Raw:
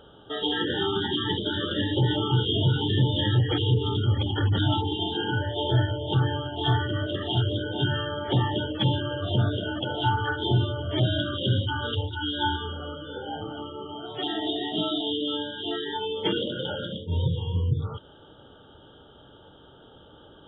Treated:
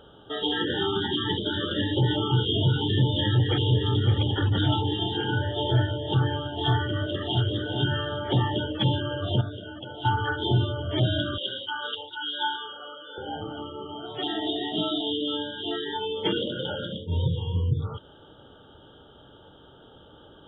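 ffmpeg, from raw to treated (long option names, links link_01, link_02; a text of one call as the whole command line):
ffmpeg -i in.wav -filter_complex "[0:a]asplit=2[link_01][link_02];[link_02]afade=type=in:start_time=2.83:duration=0.01,afade=type=out:start_time=3.87:duration=0.01,aecho=0:1:560|1120|1680|2240|2800|3360|3920|4480|5040|5600|6160:0.354813|0.248369|0.173859|0.121701|0.0851907|0.0596335|0.0417434|0.0292204|0.0204543|0.014318|0.0100226[link_03];[link_01][link_03]amix=inputs=2:normalize=0,asplit=2[link_04][link_05];[link_05]afade=type=in:start_time=6.99:duration=0.01,afade=type=out:start_time=7.48:duration=0.01,aecho=0:1:390|780|1170|1560|1950:0.334965|0.150734|0.0678305|0.0305237|0.0137357[link_06];[link_04][link_06]amix=inputs=2:normalize=0,asettb=1/sr,asplit=3[link_07][link_08][link_09];[link_07]atrim=end=11.384[link_10];[link_08]atrim=start=11.38:end=13.18,asetpts=PTS-STARTPTS,afade=type=in:duration=0.004:curve=qsin,afade=type=out:start_time=1.796:duration=0.004:curve=qsin,highpass=670[link_11];[link_09]atrim=start=13.176[link_12];[link_10][link_11]acrossfade=duration=0.004:curve1=hsin:curve2=qsin[link_13];[link_13][link_12]acrossfade=duration=0.004:curve1=qsin:curve2=hsin,asplit=3[link_14][link_15][link_16];[link_14]atrim=end=9.412[link_17];[link_15]atrim=start=9.408:end=10.052,asetpts=PTS-STARTPTS,volume=-9dB[link_18];[link_16]atrim=start=10.048[link_19];[link_17][link_18]acrossfade=duration=0.004:curve1=hsin:curve2=hsin[link_20];[link_20][link_19]acrossfade=duration=0.004:curve1=hsin:curve2=hsin" out.wav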